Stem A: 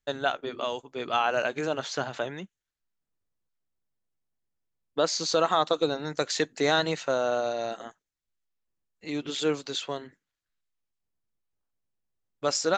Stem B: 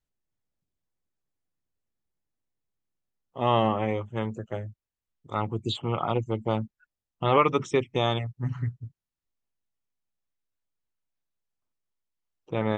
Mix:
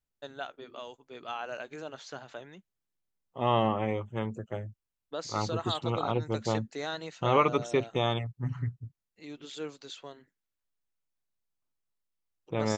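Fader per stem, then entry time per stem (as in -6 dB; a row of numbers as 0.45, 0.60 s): -12.0, -3.0 dB; 0.15, 0.00 s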